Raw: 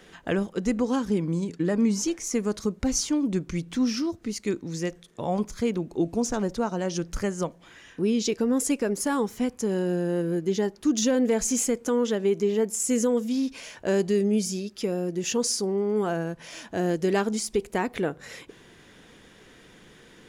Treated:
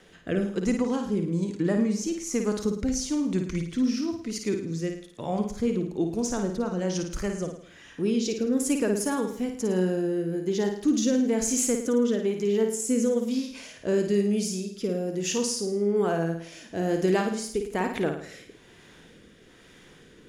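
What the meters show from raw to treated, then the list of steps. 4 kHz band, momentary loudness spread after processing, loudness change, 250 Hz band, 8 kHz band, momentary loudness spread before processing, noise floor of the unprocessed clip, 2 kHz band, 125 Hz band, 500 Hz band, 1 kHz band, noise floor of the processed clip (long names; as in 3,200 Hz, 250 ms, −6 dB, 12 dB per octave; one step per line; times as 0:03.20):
−2.0 dB, 7 LU, −0.5 dB, 0.0 dB, −1.5 dB, 7 LU, −53 dBFS, −1.5 dB, 0.0 dB, −0.5 dB, −2.0 dB, −53 dBFS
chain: rotating-speaker cabinet horn 1.1 Hz
flutter between parallel walls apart 9.3 metres, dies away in 0.55 s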